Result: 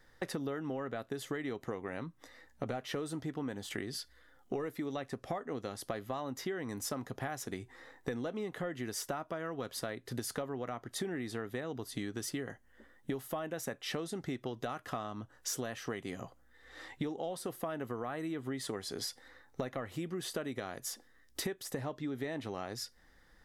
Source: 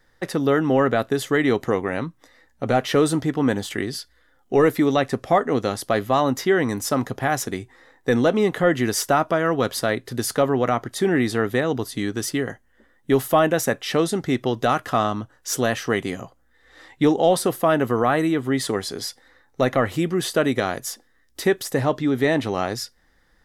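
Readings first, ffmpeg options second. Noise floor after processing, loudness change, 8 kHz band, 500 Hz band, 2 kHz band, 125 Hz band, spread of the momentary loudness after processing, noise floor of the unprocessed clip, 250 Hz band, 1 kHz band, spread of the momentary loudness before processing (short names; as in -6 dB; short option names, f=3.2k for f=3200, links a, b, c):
-64 dBFS, -18.0 dB, -12.5 dB, -19.0 dB, -18.0 dB, -16.5 dB, 6 LU, -61 dBFS, -17.5 dB, -19.5 dB, 9 LU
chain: -af "acompressor=threshold=-32dB:ratio=16,volume=-2.5dB"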